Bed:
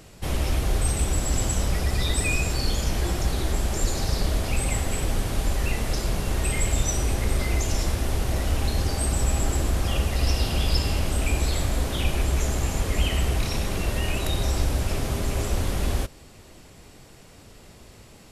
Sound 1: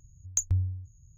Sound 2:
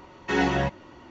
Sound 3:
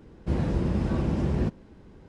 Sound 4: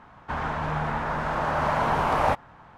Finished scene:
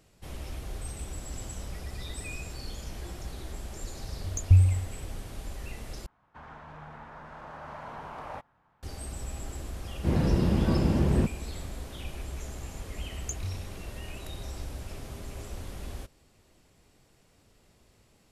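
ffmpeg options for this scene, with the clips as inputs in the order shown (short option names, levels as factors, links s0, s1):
-filter_complex "[1:a]asplit=2[s0][s1];[0:a]volume=0.188[s2];[s0]tiltshelf=f=970:g=9.5[s3];[3:a]dynaudnorm=f=100:g=5:m=3.76[s4];[s2]asplit=2[s5][s6];[s5]atrim=end=6.064[s7];[4:a]atrim=end=2.77,asetpts=PTS-STARTPTS,volume=0.126[s8];[s6]atrim=start=8.826[s9];[s3]atrim=end=1.17,asetpts=PTS-STARTPTS,volume=0.944,afade=t=in:d=0.004:c=hsin,afade=t=out:st=1.166:d=0.004:c=hsin,adelay=4000[s10];[s4]atrim=end=2.08,asetpts=PTS-STARTPTS,volume=0.355,afade=t=in:d=0.004:c=hsin,afade=t=out:st=2.076:d=0.004:c=hsin,adelay=9770[s11];[s1]atrim=end=1.17,asetpts=PTS-STARTPTS,volume=0.316,afade=t=in:d=0.004:c=hsin,afade=t=out:st=1.166:d=0.004:c=hsin,adelay=12920[s12];[s7][s8]acrossfade=d=0.004:c1=hsin:c2=hsin[s13];[s13][s9]acrossfade=d=0.004:c1=hsin:c2=hsin[s14];[s14][s10][s11][s12]amix=inputs=4:normalize=0"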